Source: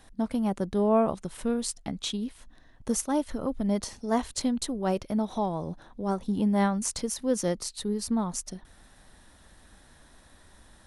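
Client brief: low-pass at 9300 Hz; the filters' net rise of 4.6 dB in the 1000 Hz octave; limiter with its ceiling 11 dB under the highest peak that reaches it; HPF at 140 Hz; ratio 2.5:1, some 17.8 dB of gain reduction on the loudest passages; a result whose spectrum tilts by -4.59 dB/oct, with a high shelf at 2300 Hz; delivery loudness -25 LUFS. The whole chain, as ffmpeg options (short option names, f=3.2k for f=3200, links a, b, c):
-af "highpass=140,lowpass=9.3k,equalizer=f=1k:t=o:g=7,highshelf=f=2.3k:g=-5.5,acompressor=threshold=-44dB:ratio=2.5,volume=23dB,alimiter=limit=-15dB:level=0:latency=1"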